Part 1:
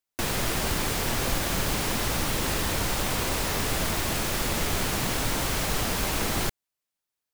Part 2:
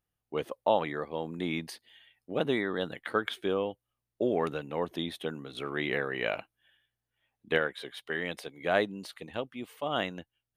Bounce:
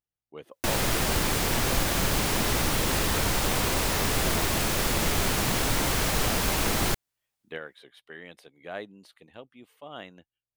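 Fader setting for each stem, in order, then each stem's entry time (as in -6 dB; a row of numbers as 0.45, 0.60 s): +1.5, -10.5 dB; 0.45, 0.00 s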